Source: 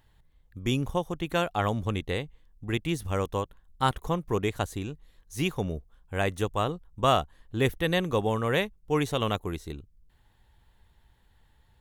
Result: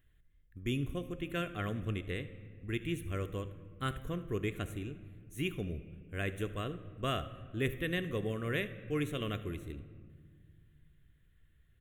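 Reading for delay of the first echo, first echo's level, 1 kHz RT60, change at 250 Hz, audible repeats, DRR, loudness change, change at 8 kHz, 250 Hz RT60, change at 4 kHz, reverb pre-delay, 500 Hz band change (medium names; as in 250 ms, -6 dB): 74 ms, -19.0 dB, 1.6 s, -6.5 dB, 1, 9.5 dB, -8.5 dB, -10.5 dB, 2.9 s, -9.5 dB, 3 ms, -10.0 dB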